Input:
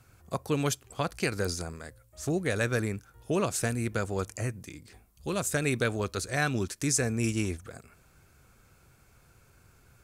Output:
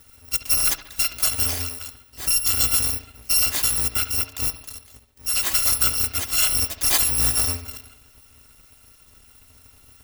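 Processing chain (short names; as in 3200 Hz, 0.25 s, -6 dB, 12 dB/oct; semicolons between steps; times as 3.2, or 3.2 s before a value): FFT order left unsorted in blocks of 256 samples; 3.82–5.28 transient shaper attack -2 dB, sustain -8 dB; analogue delay 70 ms, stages 2048, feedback 58%, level -12.5 dB; gain +8 dB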